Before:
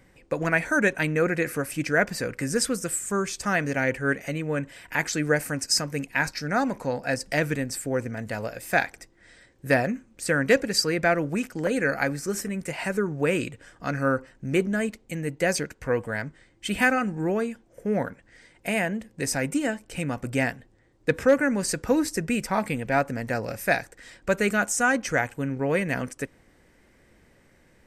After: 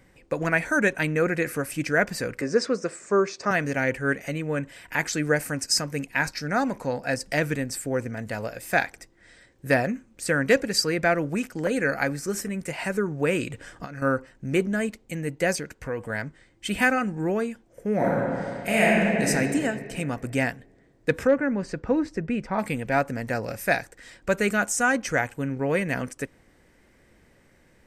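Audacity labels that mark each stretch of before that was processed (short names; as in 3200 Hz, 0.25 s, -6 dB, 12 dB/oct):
2.410000	3.510000	speaker cabinet 180–5600 Hz, peaks and dips at 410 Hz +8 dB, 600 Hz +7 dB, 1100 Hz +5 dB, 3200 Hz -10 dB
13.500000	14.020000	negative-ratio compressor -36 dBFS
15.550000	16.100000	compressor 2:1, threshold -30 dBFS
17.950000	19.270000	reverb throw, RT60 2.4 s, DRR -6.5 dB
21.270000	22.590000	tape spacing loss at 10 kHz 27 dB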